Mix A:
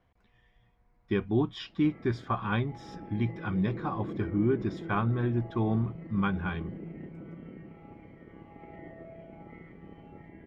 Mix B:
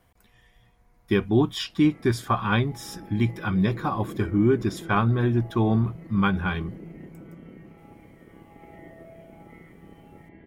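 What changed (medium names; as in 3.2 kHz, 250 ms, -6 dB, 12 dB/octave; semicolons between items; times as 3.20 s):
speech +6.0 dB; master: remove distance through air 180 m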